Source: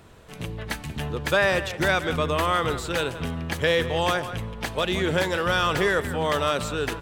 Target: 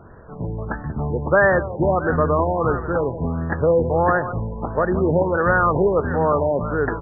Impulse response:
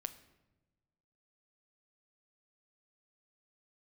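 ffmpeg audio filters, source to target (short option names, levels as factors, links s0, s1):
-af "asuperstop=centerf=2300:order=8:qfactor=2.4,afftfilt=real='re*lt(b*sr/1024,980*pow(2000/980,0.5+0.5*sin(2*PI*1.5*pts/sr)))':imag='im*lt(b*sr/1024,980*pow(2000/980,0.5+0.5*sin(2*PI*1.5*pts/sr)))':win_size=1024:overlap=0.75,volume=2.11"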